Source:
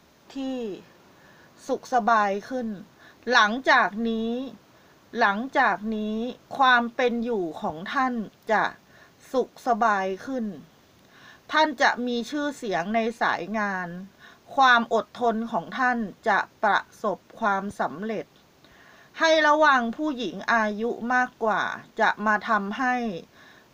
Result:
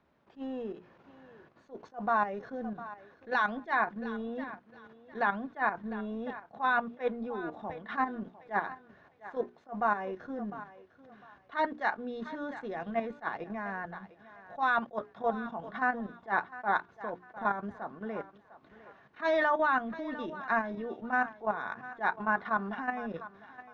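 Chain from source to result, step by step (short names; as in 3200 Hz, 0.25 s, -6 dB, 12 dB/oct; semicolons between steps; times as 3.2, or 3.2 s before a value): level quantiser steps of 11 dB; LPF 2100 Hz 12 dB/oct; notches 60/120/180/240/300/360/420 Hz; on a send: thinning echo 0.704 s, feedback 27%, high-pass 420 Hz, level -15 dB; on the sum: attack slew limiter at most 310 dB/s; gain -3.5 dB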